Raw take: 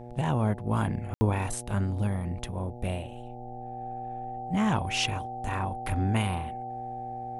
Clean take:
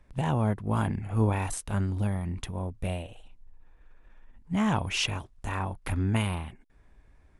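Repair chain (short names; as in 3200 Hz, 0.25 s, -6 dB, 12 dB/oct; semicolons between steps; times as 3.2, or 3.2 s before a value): de-hum 120.9 Hz, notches 7; notch 770 Hz, Q 30; room tone fill 1.14–1.21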